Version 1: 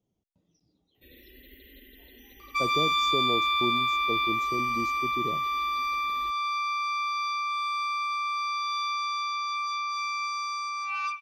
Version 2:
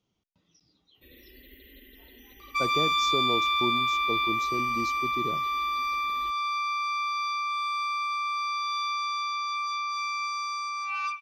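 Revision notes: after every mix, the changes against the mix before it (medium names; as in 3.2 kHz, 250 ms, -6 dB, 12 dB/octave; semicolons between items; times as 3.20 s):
speech: add high-order bell 2.4 kHz +12.5 dB 2.8 oct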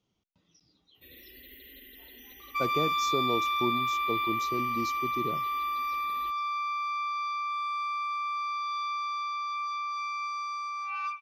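first sound: add tilt EQ +1.5 dB/octave; second sound: add treble shelf 2.6 kHz -11.5 dB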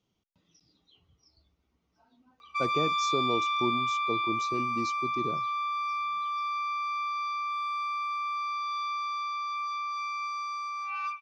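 first sound: muted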